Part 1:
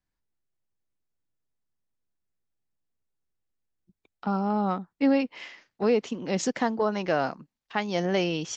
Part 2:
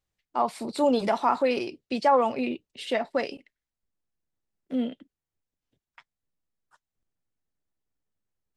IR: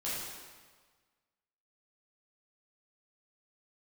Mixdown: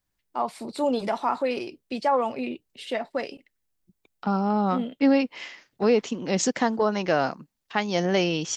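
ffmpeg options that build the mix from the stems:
-filter_complex "[0:a]highshelf=f=7k:g=8.5,volume=2.5dB[a];[1:a]volume=-2dB[b];[a][b]amix=inputs=2:normalize=0"

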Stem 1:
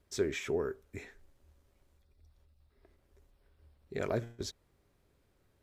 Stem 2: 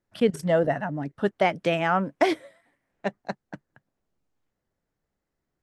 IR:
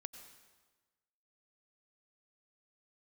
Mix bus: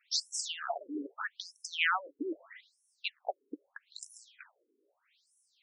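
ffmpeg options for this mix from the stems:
-filter_complex "[0:a]aexciter=amount=10.6:drive=1.3:freq=8.8k,volume=2dB[a];[1:a]asubboost=boost=6:cutoff=160,acompressor=threshold=-32dB:ratio=8,highshelf=f=6.1k:g=7,volume=3dB[b];[a][b]amix=inputs=2:normalize=0,equalizer=f=3.3k:w=0.55:g=14.5,afftfilt=real='re*between(b*sr/1024,330*pow(7800/330,0.5+0.5*sin(2*PI*0.79*pts/sr))/1.41,330*pow(7800/330,0.5+0.5*sin(2*PI*0.79*pts/sr))*1.41)':imag='im*between(b*sr/1024,330*pow(7800/330,0.5+0.5*sin(2*PI*0.79*pts/sr))/1.41,330*pow(7800/330,0.5+0.5*sin(2*PI*0.79*pts/sr))*1.41)':win_size=1024:overlap=0.75"

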